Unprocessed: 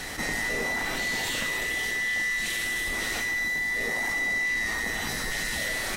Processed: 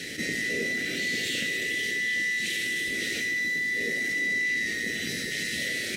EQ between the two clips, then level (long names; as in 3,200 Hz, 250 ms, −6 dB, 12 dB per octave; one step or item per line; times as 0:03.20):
high-pass filter 140 Hz 12 dB per octave
Chebyshev band-stop filter 420–2,200 Hz, order 2
high-shelf EQ 8,200 Hz −9.5 dB
+3.0 dB